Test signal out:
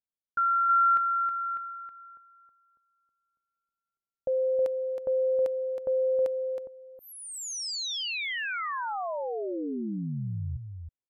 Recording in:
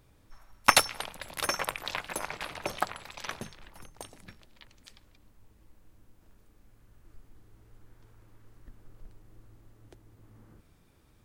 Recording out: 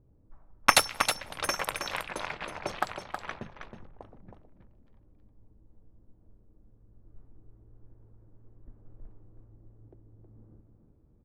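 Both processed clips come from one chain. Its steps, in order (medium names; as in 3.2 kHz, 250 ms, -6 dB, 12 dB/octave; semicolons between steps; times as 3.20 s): level-controlled noise filter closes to 420 Hz, open at -28.5 dBFS; delay 319 ms -7 dB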